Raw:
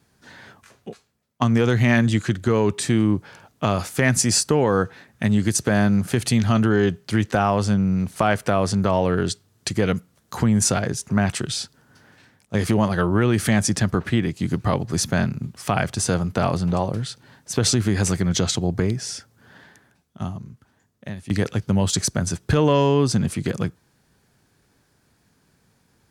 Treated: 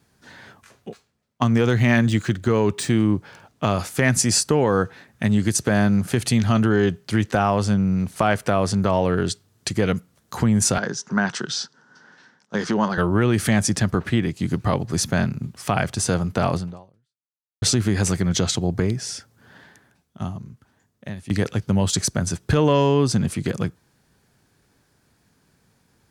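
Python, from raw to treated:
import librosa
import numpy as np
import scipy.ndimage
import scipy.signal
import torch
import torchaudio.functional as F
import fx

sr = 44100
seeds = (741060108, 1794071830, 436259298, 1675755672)

y = fx.median_filter(x, sr, points=3, at=(0.89, 3.68))
y = fx.cabinet(y, sr, low_hz=170.0, low_slope=24, high_hz=6600.0, hz=(290.0, 640.0, 960.0, 1500.0, 2400.0, 5700.0), db=(-4, -4, 4, 7, -7, 5), at=(10.78, 12.98))
y = fx.edit(y, sr, fx.fade_out_span(start_s=16.57, length_s=1.05, curve='exp'), tone=tone)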